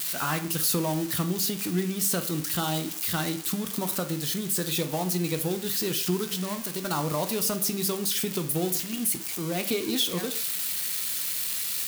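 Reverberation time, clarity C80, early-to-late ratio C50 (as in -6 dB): 0.50 s, 16.5 dB, 12.5 dB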